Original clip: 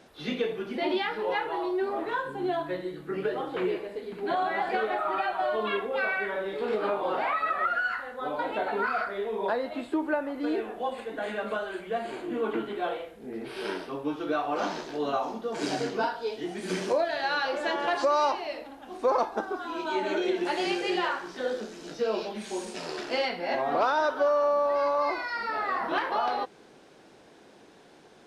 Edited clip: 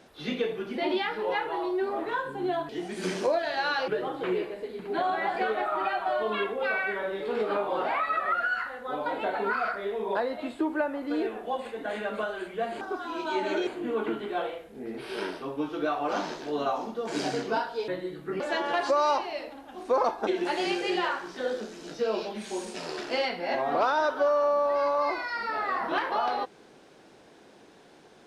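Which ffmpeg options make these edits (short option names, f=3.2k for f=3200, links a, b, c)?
-filter_complex "[0:a]asplit=8[a][b][c][d][e][f][g][h];[a]atrim=end=2.692[i];[b]atrim=start=16.348:end=17.542[j];[c]atrim=start=3.208:end=12.142[k];[d]atrim=start=19.408:end=20.272[l];[e]atrim=start=12.138:end=16.352[m];[f]atrim=start=2.688:end=3.212[n];[g]atrim=start=17.538:end=19.412[o];[h]atrim=start=20.268[p];[i][j]acrossfade=d=0.004:c1=hsin:c2=hsin[q];[q][k]acrossfade=d=0.004:c1=hsin:c2=hsin[r];[r][l]acrossfade=d=0.004:c1=hsin:c2=hsin[s];[s][m]acrossfade=d=0.004:c1=hsin:c2=hsin[t];[t][n]acrossfade=d=0.004:c1=hsin:c2=hsin[u];[u][o]acrossfade=d=0.004:c1=hsin:c2=hsin[v];[v][p]acrossfade=d=0.004:c1=hsin:c2=hsin"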